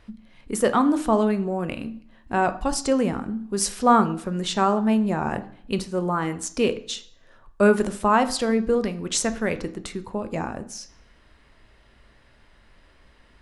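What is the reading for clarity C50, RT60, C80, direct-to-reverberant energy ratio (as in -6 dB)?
15.5 dB, 0.60 s, 18.5 dB, 10.0 dB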